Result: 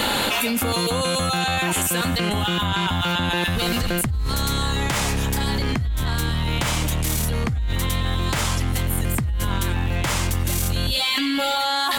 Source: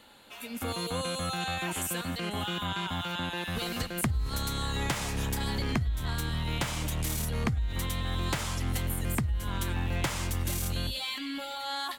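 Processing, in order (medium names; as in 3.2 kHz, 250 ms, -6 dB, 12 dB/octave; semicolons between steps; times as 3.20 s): 2.12–4.15 s: bass shelf 77 Hz +10.5 dB; level flattener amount 100%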